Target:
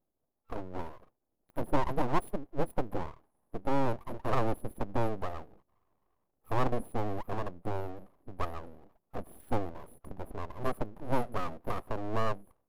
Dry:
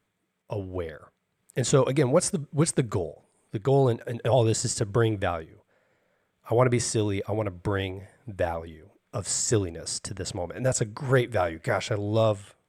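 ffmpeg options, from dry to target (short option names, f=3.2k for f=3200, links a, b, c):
-af "afftfilt=real='re*(1-between(b*sr/4096,670,10000))':imag='im*(1-between(b*sr/4096,670,10000))':win_size=4096:overlap=0.75,aeval=exprs='abs(val(0))':c=same,volume=-3.5dB"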